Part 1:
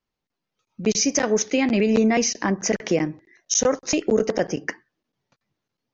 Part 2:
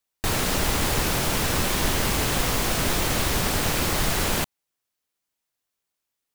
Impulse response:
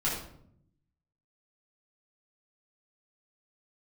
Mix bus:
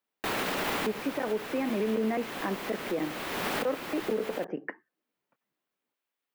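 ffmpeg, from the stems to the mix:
-filter_complex "[0:a]lowpass=1.9k,volume=-6.5dB,asplit=2[a][b];[1:a]aemphasis=mode=production:type=50kf,volume=-1dB[c];[b]apad=whole_len=279899[d];[c][d]sidechaincompress=threshold=-37dB:ratio=4:attack=16:release=563[e];[a][e]amix=inputs=2:normalize=0,acrossover=split=190 3200:gain=0.0708 1 0.0891[f][g][h];[f][g][h]amix=inputs=3:normalize=0,alimiter=limit=-21dB:level=0:latency=1:release=39"

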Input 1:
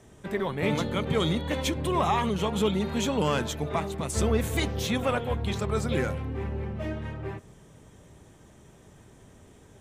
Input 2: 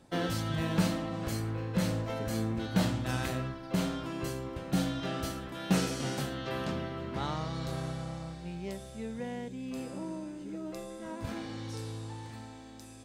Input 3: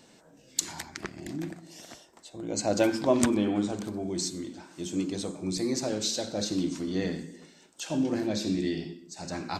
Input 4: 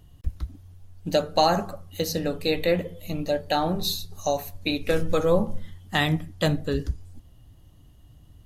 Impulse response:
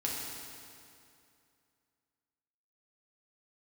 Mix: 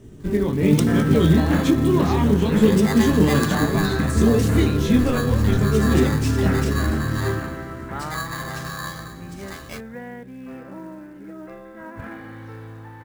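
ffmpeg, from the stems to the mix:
-filter_complex "[0:a]flanger=delay=17.5:depth=7:speed=1.1,lowshelf=f=460:t=q:w=1.5:g=11,volume=0.5dB,asplit=2[a][b];[b]volume=-13.5dB[c];[1:a]lowpass=f=1.7k:t=q:w=2.7,adelay=750,volume=1.5dB[d];[2:a]acrossover=split=1300[e][f];[e]aeval=exprs='val(0)*(1-0.5/2+0.5/2*cos(2*PI*4.4*n/s))':c=same[g];[f]aeval=exprs='val(0)*(1-0.5/2-0.5/2*cos(2*PI*4.4*n/s))':c=same[h];[g][h]amix=inputs=2:normalize=0,aeval=exprs='val(0)*sgn(sin(2*PI*1400*n/s))':c=same,adelay=200,volume=-4dB,asplit=2[i][j];[j]volume=-13dB[k];[3:a]lowpass=4k,alimiter=limit=-19dB:level=0:latency=1,volume=-3.5dB[l];[4:a]atrim=start_sample=2205[m];[c][k]amix=inputs=2:normalize=0[n];[n][m]afir=irnorm=-1:irlink=0[o];[a][d][i][l][o]amix=inputs=5:normalize=0,acrusher=bits=7:mode=log:mix=0:aa=0.000001"

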